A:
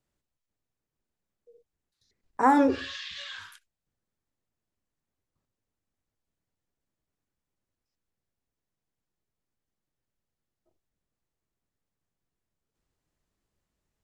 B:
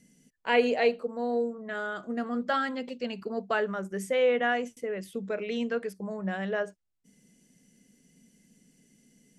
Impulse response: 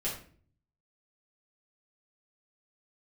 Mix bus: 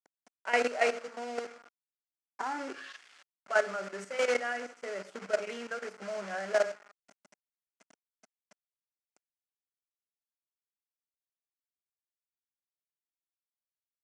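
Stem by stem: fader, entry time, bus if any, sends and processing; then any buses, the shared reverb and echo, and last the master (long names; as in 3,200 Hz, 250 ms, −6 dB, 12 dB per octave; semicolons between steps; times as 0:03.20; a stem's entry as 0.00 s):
−7.5 dB, 0.00 s, no send, notch filter 480 Hz, Q 14; automatic ducking −21 dB, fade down 0.55 s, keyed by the second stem
−4.0 dB, 0.00 s, muted 0:01.45–0:03.46, send −9 dB, parametric band 610 Hz +9.5 dB 0.28 octaves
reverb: on, RT60 0.45 s, pre-delay 5 ms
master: output level in coarse steps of 12 dB; log-companded quantiser 4 bits; loudspeaker in its box 350–7,500 Hz, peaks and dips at 480 Hz −3 dB, 760 Hz +3 dB, 1,400 Hz +9 dB, 2,100 Hz +4 dB, 3,700 Hz −7 dB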